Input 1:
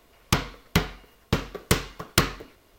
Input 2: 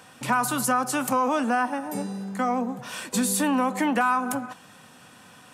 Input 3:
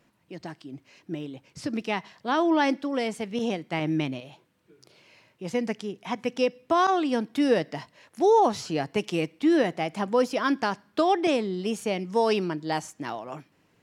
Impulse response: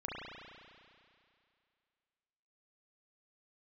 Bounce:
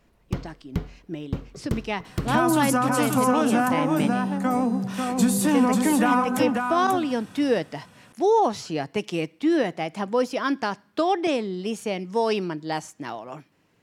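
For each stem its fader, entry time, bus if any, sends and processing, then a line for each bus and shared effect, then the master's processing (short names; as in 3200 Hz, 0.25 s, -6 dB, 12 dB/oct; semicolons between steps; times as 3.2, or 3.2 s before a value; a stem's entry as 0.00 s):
-11.5 dB, 0.00 s, no send, no echo send, tilt shelf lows +9.5 dB, about 670 Hz
-2.0 dB, 2.05 s, no send, echo send -4 dB, wow and flutter 27 cents; low shelf 280 Hz +11.5 dB
0.0 dB, 0.00 s, no send, no echo send, dry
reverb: off
echo: echo 0.54 s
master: dry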